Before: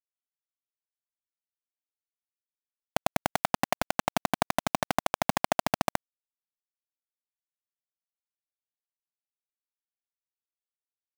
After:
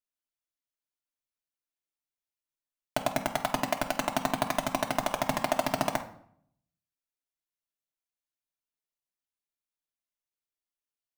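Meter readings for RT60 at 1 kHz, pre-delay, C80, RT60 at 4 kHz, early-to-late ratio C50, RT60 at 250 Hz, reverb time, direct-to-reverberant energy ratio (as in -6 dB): 0.65 s, 3 ms, 16.0 dB, 0.45 s, 11.0 dB, 0.80 s, 0.65 s, 2.0 dB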